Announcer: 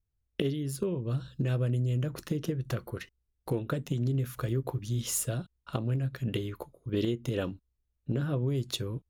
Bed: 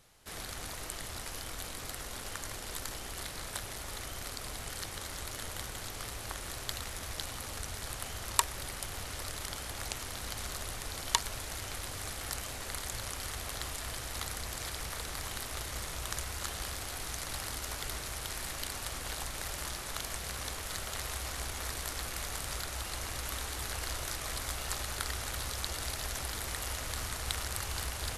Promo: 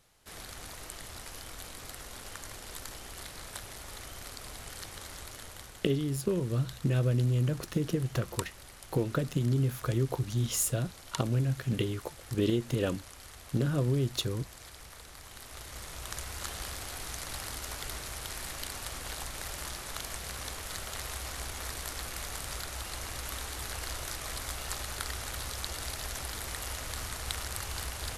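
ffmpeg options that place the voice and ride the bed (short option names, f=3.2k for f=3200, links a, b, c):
-filter_complex "[0:a]adelay=5450,volume=1.5dB[a];[1:a]volume=6.5dB,afade=t=out:st=5.12:d=0.8:silence=0.446684,afade=t=in:st=15.26:d=1.19:silence=0.334965[b];[a][b]amix=inputs=2:normalize=0"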